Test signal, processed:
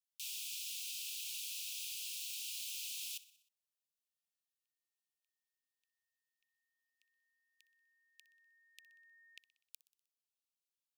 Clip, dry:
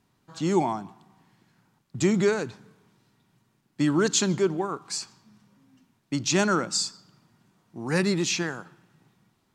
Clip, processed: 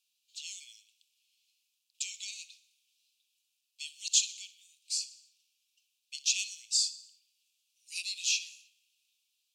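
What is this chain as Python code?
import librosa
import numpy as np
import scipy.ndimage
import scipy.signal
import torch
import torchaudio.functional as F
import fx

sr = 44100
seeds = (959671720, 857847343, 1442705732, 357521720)

p1 = scipy.signal.sosfilt(scipy.signal.butter(16, 2500.0, 'highpass', fs=sr, output='sos'), x)
p2 = p1 + fx.echo_feedback(p1, sr, ms=62, feedback_pct=58, wet_db=-18.0, dry=0)
y = F.gain(torch.from_numpy(p2), -1.0).numpy()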